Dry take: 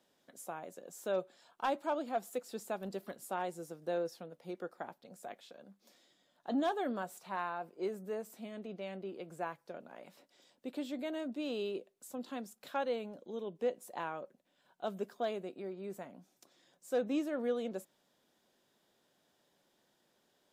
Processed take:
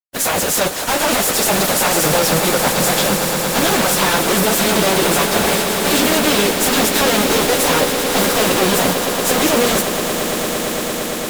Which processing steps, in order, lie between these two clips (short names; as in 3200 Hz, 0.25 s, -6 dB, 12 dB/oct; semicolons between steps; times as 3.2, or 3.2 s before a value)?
spectral contrast lowered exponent 0.55; compressor 2:1, threshold -42 dBFS, peak gain reduction 8 dB; sample leveller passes 5; fuzz box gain 55 dB, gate -57 dBFS; plain phase-vocoder stretch 0.55×; swelling echo 0.114 s, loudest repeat 8, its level -12.5 dB; gain +1 dB